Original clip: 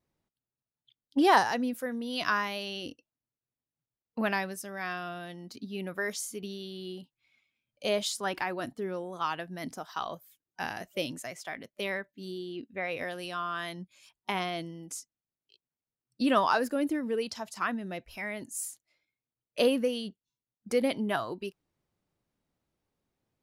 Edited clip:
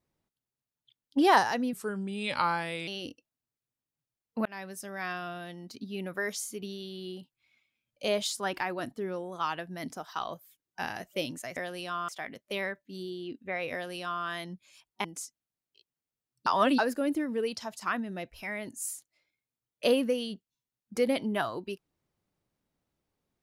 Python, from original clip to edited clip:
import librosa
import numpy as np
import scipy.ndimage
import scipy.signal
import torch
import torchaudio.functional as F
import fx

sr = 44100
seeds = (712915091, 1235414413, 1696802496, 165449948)

y = fx.edit(x, sr, fx.speed_span(start_s=1.73, length_s=0.95, speed=0.83),
    fx.fade_in_span(start_s=4.26, length_s=0.4),
    fx.duplicate(start_s=13.01, length_s=0.52, to_s=11.37),
    fx.cut(start_s=14.33, length_s=0.46),
    fx.reverse_span(start_s=16.21, length_s=0.32), tone=tone)